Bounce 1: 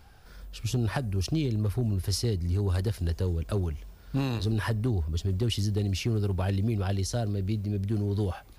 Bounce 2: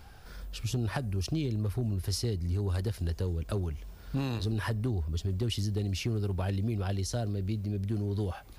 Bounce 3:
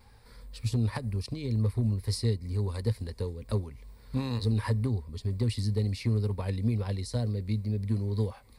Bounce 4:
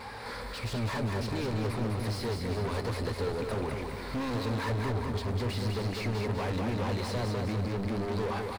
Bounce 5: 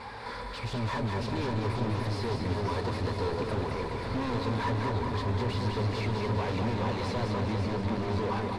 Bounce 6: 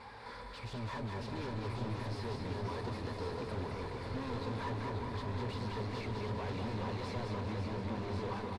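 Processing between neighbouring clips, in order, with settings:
compression 1.5:1, threshold -42 dBFS, peak gain reduction 7 dB; trim +3 dB
vibrato 2.1 Hz 48 cents; rippled EQ curve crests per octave 0.95, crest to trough 10 dB; upward expansion 1.5:1, over -38 dBFS; trim +1 dB
overdrive pedal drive 42 dB, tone 1.6 kHz, clips at -16.5 dBFS; feedback delay 201 ms, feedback 50%, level -4.5 dB; trim -9 dB
distance through air 54 m; small resonant body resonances 980/3500 Hz, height 8 dB; modulated delay 534 ms, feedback 74%, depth 98 cents, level -7.5 dB
delay 1092 ms -6.5 dB; trim -9 dB

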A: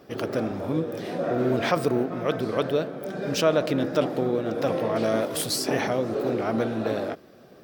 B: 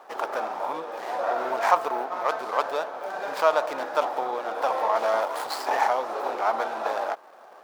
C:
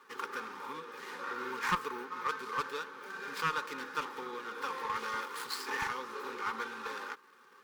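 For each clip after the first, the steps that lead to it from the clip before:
median filter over 15 samples; in parallel at -2 dB: compression, threshold -33 dBFS, peak gain reduction 16 dB; on the sum: resonant high-pass 890 Hz, resonance Q 3.9
one-sided clip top -15.5 dBFS; Butterworth band-stop 670 Hz, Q 0.93; comb of notches 330 Hz; trim -3 dB

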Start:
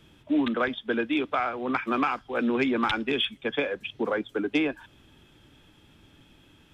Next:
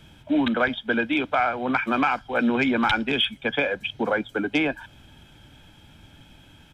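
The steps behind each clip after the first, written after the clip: comb 1.3 ms, depth 47%; in parallel at -2 dB: peak limiter -19 dBFS, peak gain reduction 7 dB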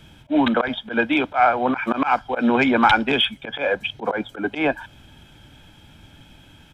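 dynamic bell 810 Hz, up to +7 dB, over -37 dBFS, Q 0.9; slow attack 103 ms; trim +2.5 dB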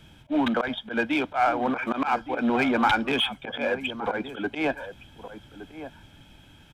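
in parallel at -6 dB: hard clipper -21 dBFS, distortion -6 dB; on the sum: echo from a far wall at 200 m, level -12 dB; trim -7.5 dB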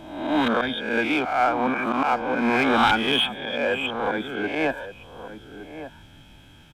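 reverse spectral sustain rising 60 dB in 0.87 s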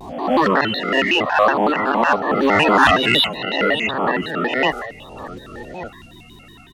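coarse spectral quantiser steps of 30 dB; vibrato with a chosen wave square 5.4 Hz, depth 250 cents; trim +6.5 dB

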